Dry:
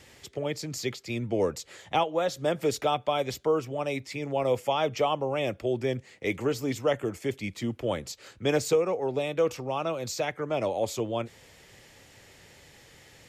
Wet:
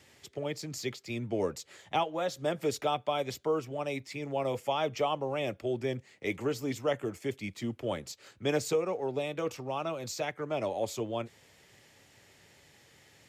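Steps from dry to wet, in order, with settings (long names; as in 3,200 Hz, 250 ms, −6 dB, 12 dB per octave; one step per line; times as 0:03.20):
high-pass filter 76 Hz
notch filter 500 Hz, Q 16
in parallel at −10 dB: dead-zone distortion −48.5 dBFS
on the sum: level −6 dB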